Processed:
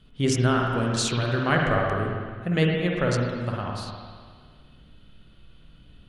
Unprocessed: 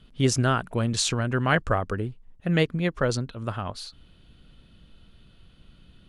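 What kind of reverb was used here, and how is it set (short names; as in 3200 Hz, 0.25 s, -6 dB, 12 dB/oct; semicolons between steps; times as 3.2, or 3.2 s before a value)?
spring tank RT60 1.8 s, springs 50/57 ms, chirp 65 ms, DRR -1 dB; gain -2 dB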